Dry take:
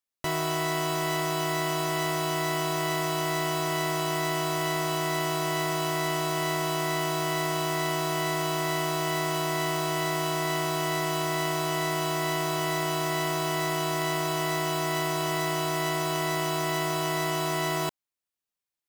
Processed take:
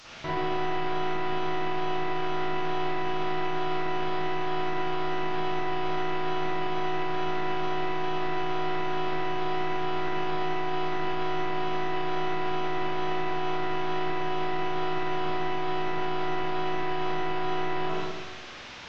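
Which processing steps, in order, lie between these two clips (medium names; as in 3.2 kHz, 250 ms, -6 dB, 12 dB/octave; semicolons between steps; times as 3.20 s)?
one-bit delta coder 32 kbps, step -39 dBFS; spring tank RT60 1.3 s, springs 43/55 ms, chirp 65 ms, DRR -8.5 dB; peak limiter -15.5 dBFS, peak gain reduction 6 dB; trim -4 dB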